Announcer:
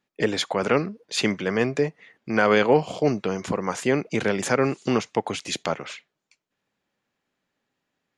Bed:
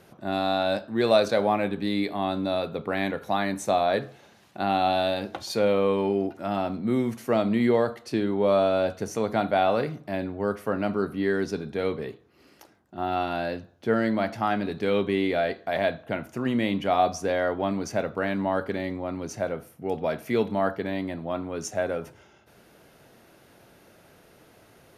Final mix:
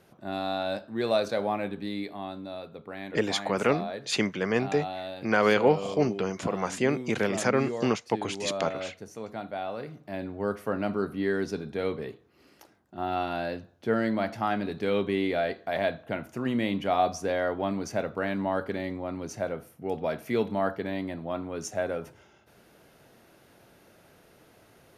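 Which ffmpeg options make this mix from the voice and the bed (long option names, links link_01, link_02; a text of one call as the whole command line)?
ffmpeg -i stem1.wav -i stem2.wav -filter_complex "[0:a]adelay=2950,volume=-3.5dB[link_01];[1:a]volume=4dB,afade=type=out:start_time=1.67:duration=0.79:silence=0.473151,afade=type=in:start_time=9.77:duration=0.69:silence=0.334965[link_02];[link_01][link_02]amix=inputs=2:normalize=0" out.wav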